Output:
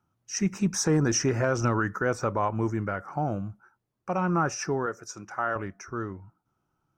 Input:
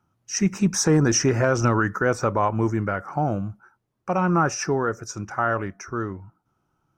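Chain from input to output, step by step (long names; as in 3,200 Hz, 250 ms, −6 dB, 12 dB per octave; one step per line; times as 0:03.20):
0:04.86–0:05.56: high-pass filter 330 Hz 6 dB per octave
level −5 dB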